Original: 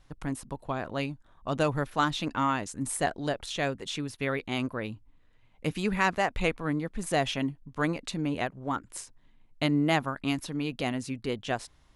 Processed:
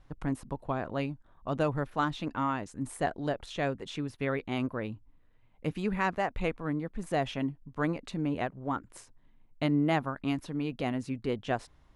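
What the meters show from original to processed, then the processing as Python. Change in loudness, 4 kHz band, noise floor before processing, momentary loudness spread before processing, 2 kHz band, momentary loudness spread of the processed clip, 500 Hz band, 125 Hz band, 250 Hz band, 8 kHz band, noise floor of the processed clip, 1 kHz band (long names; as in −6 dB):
−2.5 dB, −7.5 dB, −61 dBFS, 9 LU, −5.0 dB, 7 LU, −1.5 dB, −1.0 dB, −1.0 dB, −11.5 dB, −62 dBFS, −2.5 dB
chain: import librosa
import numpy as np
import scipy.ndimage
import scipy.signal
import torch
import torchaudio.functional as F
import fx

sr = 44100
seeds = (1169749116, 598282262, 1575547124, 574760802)

y = fx.high_shelf(x, sr, hz=2800.0, db=-11.5)
y = fx.rider(y, sr, range_db=3, speed_s=2.0)
y = y * 10.0 ** (-1.5 / 20.0)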